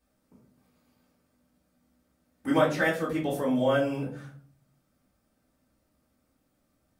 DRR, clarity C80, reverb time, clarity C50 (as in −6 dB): −7.0 dB, 12.5 dB, 0.45 s, 7.5 dB